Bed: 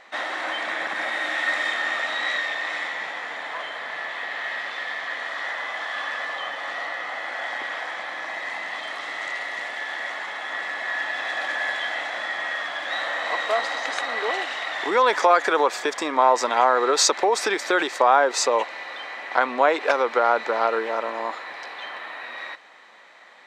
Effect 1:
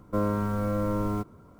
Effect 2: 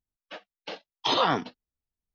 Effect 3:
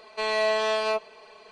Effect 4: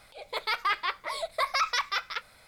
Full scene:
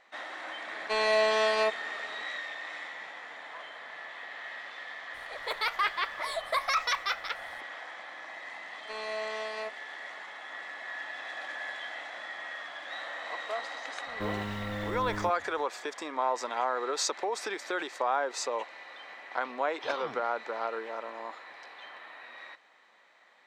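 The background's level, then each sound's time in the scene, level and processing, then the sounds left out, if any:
bed -12 dB
0.72 s: add 3 -1 dB
5.14 s: add 4 -1 dB + band-stop 4.9 kHz, Q 17
8.71 s: add 3 -12 dB
14.07 s: add 1 -9 dB
18.77 s: add 2 -18 dB + bit crusher 11-bit

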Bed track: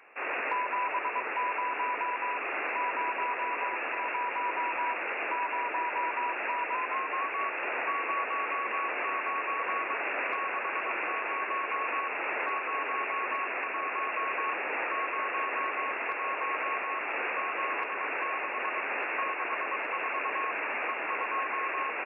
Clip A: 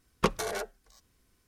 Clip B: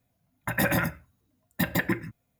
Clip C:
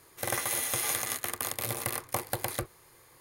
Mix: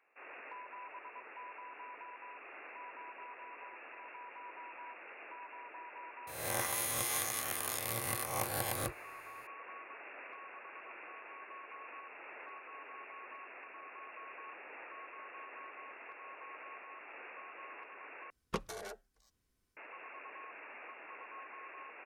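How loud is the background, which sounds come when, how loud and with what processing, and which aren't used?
bed track -18 dB
6.27 s: add C -7.5 dB + reverse spectral sustain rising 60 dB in 0.87 s
18.30 s: replace with A -11.5 dB
not used: B

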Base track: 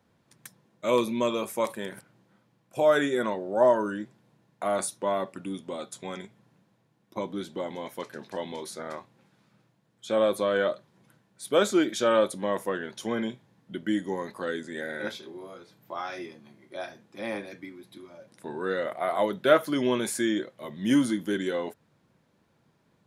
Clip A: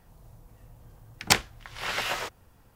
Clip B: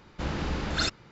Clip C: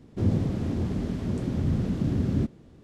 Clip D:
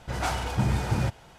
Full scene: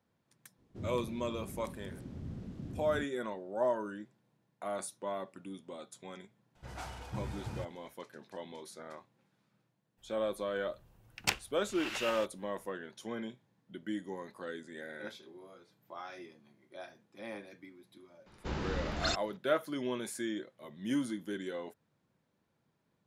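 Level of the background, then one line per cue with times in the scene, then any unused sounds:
base track -10.5 dB
0.58 s: add C -17.5 dB
6.55 s: add D -15.5 dB
9.97 s: add A -12 dB, fades 0.02 s + peaking EQ 2.7 kHz +9.5 dB 0.24 oct
18.26 s: add B -6 dB

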